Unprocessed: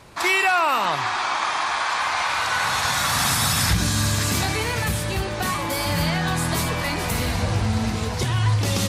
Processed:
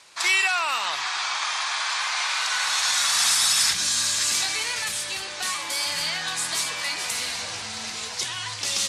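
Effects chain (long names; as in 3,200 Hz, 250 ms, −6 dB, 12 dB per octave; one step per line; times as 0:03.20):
meter weighting curve ITU-R 468
level −7.5 dB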